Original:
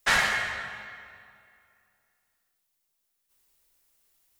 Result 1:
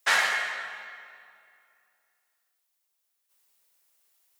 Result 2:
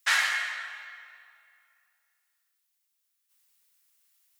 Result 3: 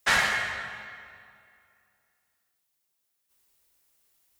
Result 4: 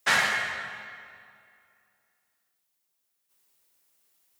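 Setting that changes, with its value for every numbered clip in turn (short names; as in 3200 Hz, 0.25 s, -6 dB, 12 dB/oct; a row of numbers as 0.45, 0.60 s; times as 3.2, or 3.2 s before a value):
HPF, cutoff: 450, 1300, 41, 120 Hz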